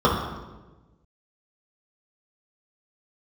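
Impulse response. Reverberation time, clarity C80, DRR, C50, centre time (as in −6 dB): 1.2 s, 6.0 dB, −7.0 dB, 3.0 dB, 51 ms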